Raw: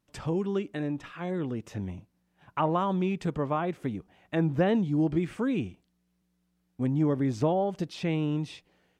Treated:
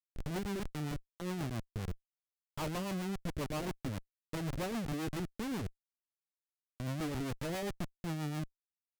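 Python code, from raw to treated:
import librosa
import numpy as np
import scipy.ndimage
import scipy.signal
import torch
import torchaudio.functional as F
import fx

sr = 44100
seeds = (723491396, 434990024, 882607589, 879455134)

y = fx.env_lowpass_down(x, sr, base_hz=2700.0, full_db=-23.5)
y = fx.schmitt(y, sr, flips_db=-31.0)
y = fx.rotary(y, sr, hz=7.5)
y = F.gain(torch.from_numpy(y), -5.0).numpy()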